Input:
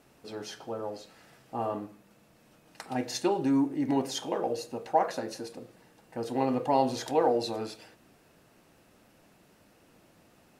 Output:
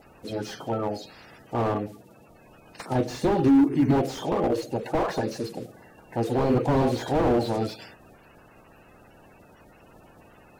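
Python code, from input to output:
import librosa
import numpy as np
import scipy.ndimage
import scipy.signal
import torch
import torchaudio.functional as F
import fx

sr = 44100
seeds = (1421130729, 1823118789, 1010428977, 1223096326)

y = fx.spec_quant(x, sr, step_db=30)
y = fx.low_shelf(y, sr, hz=230.0, db=3.5)
y = fx.slew_limit(y, sr, full_power_hz=21.0)
y = F.gain(torch.from_numpy(y), 8.0).numpy()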